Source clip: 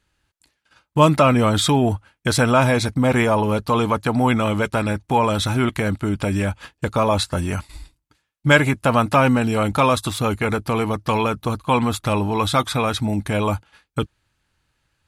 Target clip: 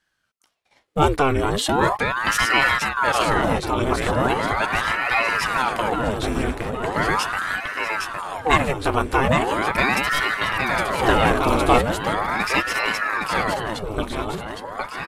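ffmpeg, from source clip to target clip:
-filter_complex "[0:a]aecho=1:1:812|1624|2436|3248|4060|4872|5684|6496:0.596|0.351|0.207|0.122|0.0722|0.0426|0.0251|0.0148,asplit=3[a][b][c];[a]afade=t=out:st=10.99:d=0.02[d];[b]acontrast=72,afade=t=in:st=10.99:d=0.02,afade=t=out:st=11.81:d=0.02[e];[c]afade=t=in:st=11.81:d=0.02[f];[d][e][f]amix=inputs=3:normalize=0,aeval=exprs='val(0)*sin(2*PI*880*n/s+880*0.85/0.39*sin(2*PI*0.39*n/s))':c=same,volume=-1dB"

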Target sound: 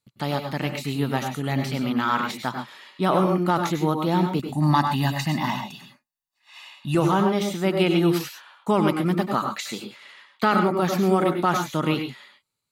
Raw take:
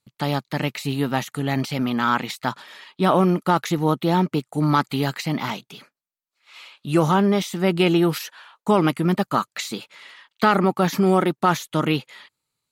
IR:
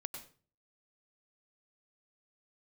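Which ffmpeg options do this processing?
-filter_complex "[0:a]asettb=1/sr,asplit=3[a][b][c];[a]atrim=end=4.394[d];[b]atrim=start=4.39:end=6.95,asetpts=PTS-STARTPTS,afade=t=in:d=0.004:c=qsin,afade=t=out:st=2.556:d=0.004:c=qsin,aecho=1:1:1.1:0.91,atrim=end_sample=112896[e];[c]atrim=start=6.946[f];[d][e]acrossfade=d=0.004:c1=hsin:c2=qsin[g];[g][f]acrossfade=d=0.004:c1=qsin:c2=hsin[h];[1:a]atrim=start_sample=2205,afade=t=out:st=0.19:d=0.01,atrim=end_sample=8820[i];[h][i]afir=irnorm=-1:irlink=0"

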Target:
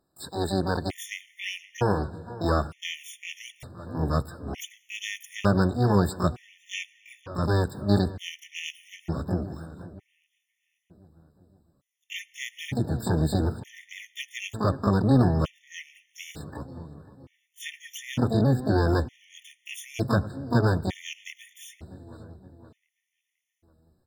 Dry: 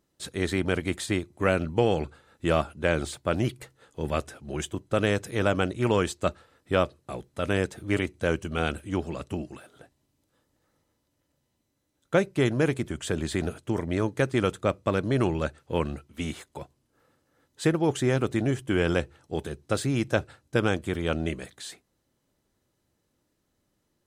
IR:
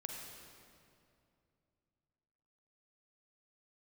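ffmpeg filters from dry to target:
-filter_complex "[0:a]asubboost=boost=3:cutoff=210,asplit=2[a][b];[b]asetrate=88200,aresample=44100,atempo=0.5,volume=-3dB[c];[a][c]amix=inputs=2:normalize=0,asplit=2[d][e];[e]adelay=520,lowpass=f=2.6k:p=1,volume=-17dB,asplit=2[f][g];[g]adelay=520,lowpass=f=2.6k:p=1,volume=0.54,asplit=2[h][i];[i]adelay=520,lowpass=f=2.6k:p=1,volume=0.54,asplit=2[j][k];[k]adelay=520,lowpass=f=2.6k:p=1,volume=0.54,asplit=2[l][m];[m]adelay=520,lowpass=f=2.6k:p=1,volume=0.54[n];[d][f][h][j][l][n]amix=inputs=6:normalize=0,asplit=2[o][p];[1:a]atrim=start_sample=2205,asetrate=34398,aresample=44100[q];[p][q]afir=irnorm=-1:irlink=0,volume=-18.5dB[r];[o][r]amix=inputs=2:normalize=0,afftfilt=real='re*gt(sin(2*PI*0.55*pts/sr)*(1-2*mod(floor(b*sr/1024/1800),2)),0)':imag='im*gt(sin(2*PI*0.55*pts/sr)*(1-2*mod(floor(b*sr/1024/1800),2)),0)':win_size=1024:overlap=0.75,volume=-2.5dB"

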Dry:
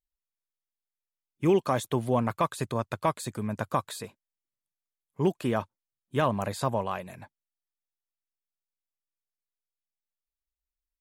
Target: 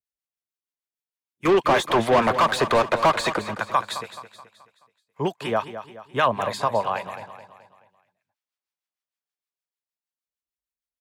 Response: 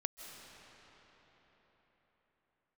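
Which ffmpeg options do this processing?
-filter_complex "[0:a]highpass=88,acrossover=split=350|490|5800[a][b][c][d];[c]dynaudnorm=f=270:g=17:m=12dB[e];[a][b][e][d]amix=inputs=4:normalize=0,acrossover=split=930[f][g];[f]aeval=exprs='val(0)*(1-0.7/2+0.7/2*cos(2*PI*6.5*n/s))':c=same[h];[g]aeval=exprs='val(0)*(1-0.7/2-0.7/2*cos(2*PI*6.5*n/s))':c=same[i];[h][i]amix=inputs=2:normalize=0,asettb=1/sr,asplit=3[j][k][l];[j]atrim=end=1.454[m];[k]atrim=start=1.45:end=3.39,asetpts=PTS-STARTPTS,afade=t=in:d=0.004:c=qsin,afade=t=out:st=1.936:d=0.004:c=qsin,asplit=2[n][o];[o]highpass=f=720:p=1,volume=29dB,asoftclip=type=tanh:threshold=-9.5dB[p];[n][p]amix=inputs=2:normalize=0,lowpass=f=1.8k:p=1,volume=-6dB[q];[l]atrim=start=3.386[r];[m][q]acrossfade=d=0.004:c1=hsin:c2=qsin[s];[s][r]acrossfade=d=0.004:c1=qsin:c2=hsin,aecho=1:1:214|428|642|856|1070:0.251|0.116|0.0532|0.0244|0.0112"

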